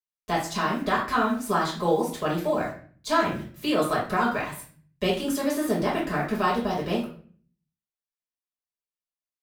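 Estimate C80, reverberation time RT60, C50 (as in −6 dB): 11.0 dB, 0.45 s, 6.0 dB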